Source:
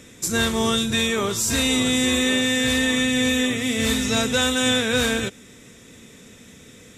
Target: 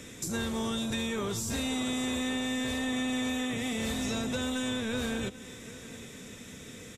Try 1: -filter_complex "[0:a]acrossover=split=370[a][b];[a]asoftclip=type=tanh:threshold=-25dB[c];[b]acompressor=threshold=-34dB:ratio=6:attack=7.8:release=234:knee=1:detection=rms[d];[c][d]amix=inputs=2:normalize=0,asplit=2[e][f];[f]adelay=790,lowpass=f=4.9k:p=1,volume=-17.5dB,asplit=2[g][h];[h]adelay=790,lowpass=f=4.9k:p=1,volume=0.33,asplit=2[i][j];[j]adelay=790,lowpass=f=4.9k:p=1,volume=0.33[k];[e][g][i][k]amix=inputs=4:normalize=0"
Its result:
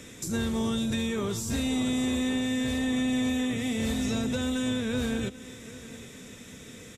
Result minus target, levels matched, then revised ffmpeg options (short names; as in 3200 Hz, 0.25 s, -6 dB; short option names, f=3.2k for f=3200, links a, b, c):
soft clip: distortion -6 dB
-filter_complex "[0:a]acrossover=split=370[a][b];[a]asoftclip=type=tanh:threshold=-32.5dB[c];[b]acompressor=threshold=-34dB:ratio=6:attack=7.8:release=234:knee=1:detection=rms[d];[c][d]amix=inputs=2:normalize=0,asplit=2[e][f];[f]adelay=790,lowpass=f=4.9k:p=1,volume=-17.5dB,asplit=2[g][h];[h]adelay=790,lowpass=f=4.9k:p=1,volume=0.33,asplit=2[i][j];[j]adelay=790,lowpass=f=4.9k:p=1,volume=0.33[k];[e][g][i][k]amix=inputs=4:normalize=0"